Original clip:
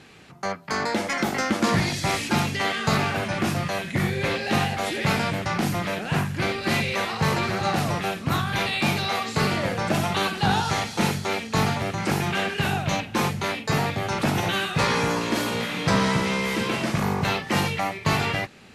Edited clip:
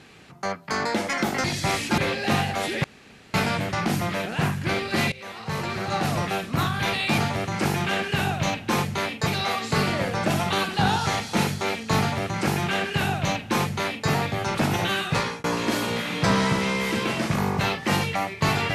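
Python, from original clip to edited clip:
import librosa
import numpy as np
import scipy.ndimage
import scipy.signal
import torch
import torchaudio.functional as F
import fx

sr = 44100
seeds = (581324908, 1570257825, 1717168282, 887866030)

y = fx.edit(x, sr, fx.cut(start_s=1.44, length_s=0.4),
    fx.cut(start_s=2.38, length_s=1.83),
    fx.insert_room_tone(at_s=5.07, length_s=0.5),
    fx.fade_in_from(start_s=6.85, length_s=1.05, floor_db=-18.0),
    fx.duplicate(start_s=11.64, length_s=2.09, to_s=8.91),
    fx.fade_out_span(start_s=14.75, length_s=0.33), tone=tone)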